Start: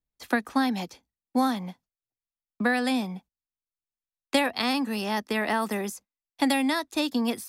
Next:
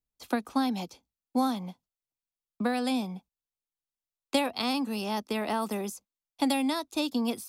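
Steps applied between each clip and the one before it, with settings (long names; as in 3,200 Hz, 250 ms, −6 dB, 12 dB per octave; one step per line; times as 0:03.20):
parametric band 1,800 Hz −11.5 dB 0.44 octaves
level −2.5 dB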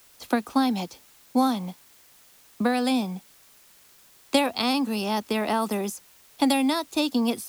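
bit-depth reduction 10 bits, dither triangular
level +5 dB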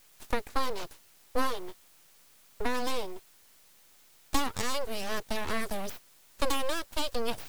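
full-wave rectification
level −4 dB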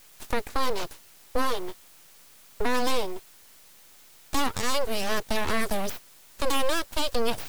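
brickwall limiter −20.5 dBFS, peak gain reduction 8 dB
level +6.5 dB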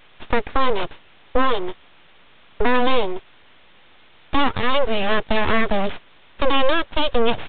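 downsampling to 8,000 Hz
level +8 dB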